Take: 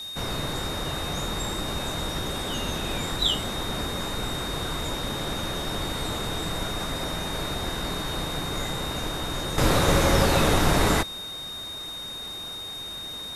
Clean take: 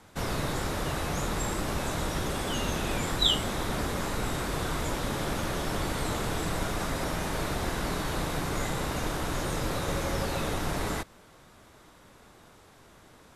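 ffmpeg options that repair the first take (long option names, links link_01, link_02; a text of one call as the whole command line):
ffmpeg -i in.wav -af "bandreject=frequency=3700:width=30,afwtdn=0.0045,asetnsamples=nb_out_samples=441:pad=0,asendcmd='9.58 volume volume -10dB',volume=0dB" out.wav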